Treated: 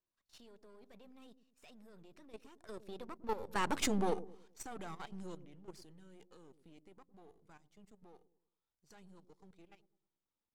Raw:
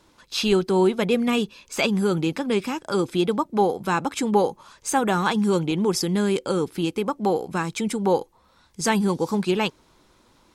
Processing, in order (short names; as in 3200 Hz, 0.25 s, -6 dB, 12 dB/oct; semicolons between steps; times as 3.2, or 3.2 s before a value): half-wave gain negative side -12 dB; Doppler pass-by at 3.77, 29 m/s, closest 1.7 m; level quantiser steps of 13 dB; dark delay 0.106 s, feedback 39%, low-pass 410 Hz, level -11 dB; gain +7 dB